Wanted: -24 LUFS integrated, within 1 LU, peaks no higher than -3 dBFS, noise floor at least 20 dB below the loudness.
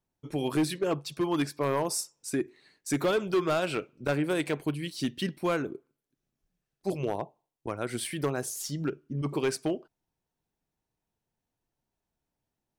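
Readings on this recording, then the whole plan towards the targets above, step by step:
clipped 0.9%; flat tops at -21.0 dBFS; loudness -31.0 LUFS; peak -21.0 dBFS; loudness target -24.0 LUFS
-> clip repair -21 dBFS; gain +7 dB

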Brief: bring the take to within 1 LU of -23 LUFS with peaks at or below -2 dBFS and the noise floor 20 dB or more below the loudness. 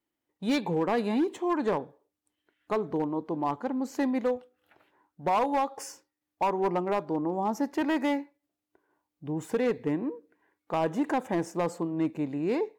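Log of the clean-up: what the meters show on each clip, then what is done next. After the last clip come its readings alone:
clipped 1.2%; flat tops at -20.5 dBFS; loudness -29.5 LUFS; peak -20.5 dBFS; loudness target -23.0 LUFS
-> clip repair -20.5 dBFS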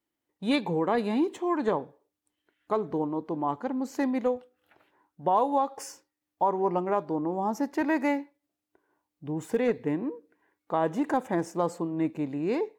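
clipped 0.0%; loudness -29.0 LUFS; peak -13.0 dBFS; loudness target -23.0 LUFS
-> gain +6 dB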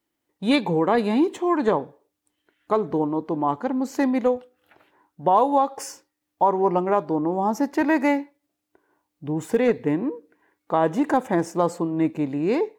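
loudness -23.0 LUFS; peak -7.0 dBFS; noise floor -80 dBFS

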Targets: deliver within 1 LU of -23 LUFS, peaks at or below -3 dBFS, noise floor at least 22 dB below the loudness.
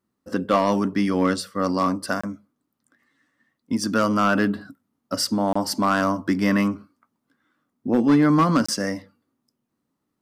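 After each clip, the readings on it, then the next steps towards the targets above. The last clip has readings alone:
clipped 0.3%; flat tops at -11.0 dBFS; dropouts 3; longest dropout 25 ms; loudness -22.0 LUFS; peak -11.0 dBFS; loudness target -23.0 LUFS
-> clip repair -11 dBFS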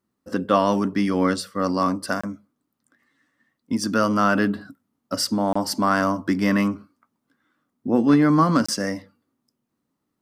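clipped 0.0%; dropouts 3; longest dropout 25 ms
-> interpolate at 2.21/5.53/8.66, 25 ms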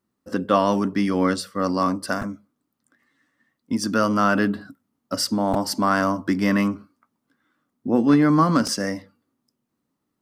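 dropouts 0; loudness -21.5 LUFS; peak -5.5 dBFS; loudness target -23.0 LUFS
-> gain -1.5 dB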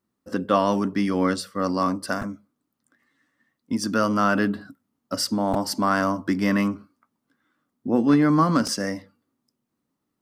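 loudness -23.0 LUFS; peak -7.0 dBFS; noise floor -80 dBFS

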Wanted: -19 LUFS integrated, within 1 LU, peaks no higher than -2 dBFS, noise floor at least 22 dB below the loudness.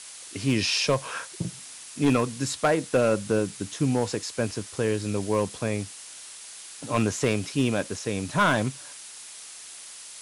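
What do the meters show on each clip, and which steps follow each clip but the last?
clipped 0.5%; flat tops at -14.5 dBFS; noise floor -43 dBFS; noise floor target -49 dBFS; loudness -26.5 LUFS; peak -14.5 dBFS; loudness target -19.0 LUFS
-> clip repair -14.5 dBFS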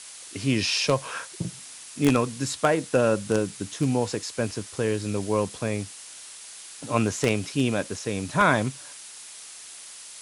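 clipped 0.0%; noise floor -43 dBFS; noise floor target -48 dBFS
-> noise print and reduce 6 dB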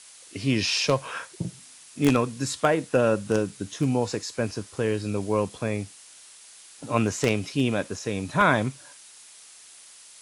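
noise floor -49 dBFS; loudness -26.0 LUFS; peak -5.5 dBFS; loudness target -19.0 LUFS
-> gain +7 dB; limiter -2 dBFS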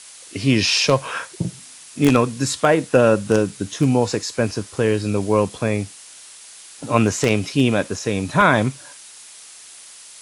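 loudness -19.5 LUFS; peak -2.0 dBFS; noise floor -42 dBFS

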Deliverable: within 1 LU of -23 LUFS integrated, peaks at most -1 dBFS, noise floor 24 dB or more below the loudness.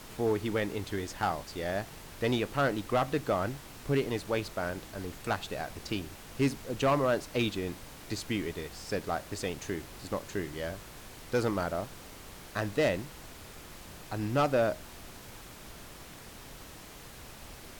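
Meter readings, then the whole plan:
clipped 0.4%; flat tops at -20.5 dBFS; noise floor -49 dBFS; noise floor target -57 dBFS; loudness -32.5 LUFS; peak -20.5 dBFS; loudness target -23.0 LUFS
-> clip repair -20.5 dBFS; noise print and reduce 8 dB; gain +9.5 dB

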